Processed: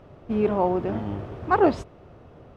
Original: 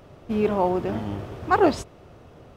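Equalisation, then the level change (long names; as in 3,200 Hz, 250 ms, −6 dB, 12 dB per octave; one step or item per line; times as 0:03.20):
low-pass filter 2,000 Hz 6 dB per octave
0.0 dB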